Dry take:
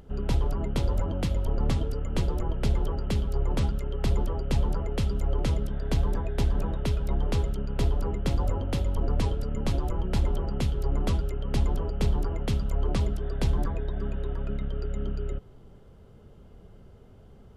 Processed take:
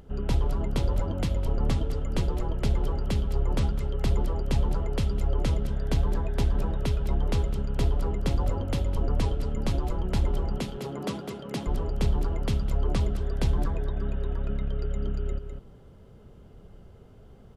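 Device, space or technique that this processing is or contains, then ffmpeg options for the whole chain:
ducked delay: -filter_complex "[0:a]asettb=1/sr,asplit=3[link_01][link_02][link_03];[link_01]atrim=end=10.574[link_04];[link_02]atrim=start=10.57:end=11.67,asetpts=PTS-STARTPTS,afade=type=in:duration=0.004:curve=qsin,afade=type=out:start_time=1.096:duration=0.004:curve=qsin,highpass=frequency=150:width=0.5412,highpass=frequency=150:width=1.3066[link_05];[link_03]atrim=start=11.666[link_06];[link_04][link_05]acrossfade=duration=0.004:curve1=hsin:curve2=qsin[link_07];[link_07][link_06]acrossfade=duration=0.004:curve1=qsin:curve2=hsin,asplit=3[link_08][link_09][link_10];[link_09]adelay=204,volume=-6.5dB[link_11];[link_10]apad=whole_len=783720[link_12];[link_11][link_12]sidechaincompress=threshold=-31dB:ratio=8:attack=16:release=307[link_13];[link_08][link_13]amix=inputs=2:normalize=0"

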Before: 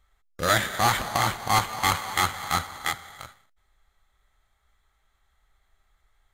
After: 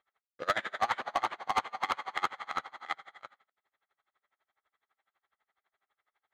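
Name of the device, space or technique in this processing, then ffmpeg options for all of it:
helicopter radio: -af "highpass=400,lowpass=2700,aeval=exprs='val(0)*pow(10,-27*(0.5-0.5*cos(2*PI*12*n/s))/20)':channel_layout=same,asoftclip=type=hard:threshold=-20dB"

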